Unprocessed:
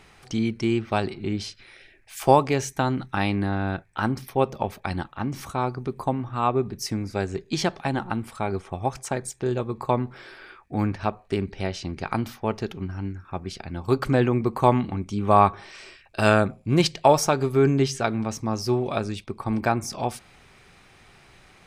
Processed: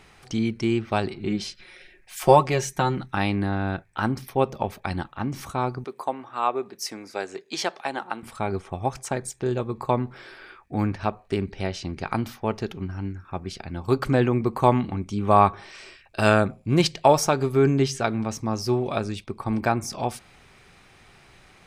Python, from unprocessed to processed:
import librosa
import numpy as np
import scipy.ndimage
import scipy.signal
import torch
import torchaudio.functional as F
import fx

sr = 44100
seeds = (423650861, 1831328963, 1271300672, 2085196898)

y = fx.comb(x, sr, ms=5.5, depth=0.63, at=(1.27, 2.99))
y = fx.highpass(y, sr, hz=450.0, slope=12, at=(5.84, 8.23))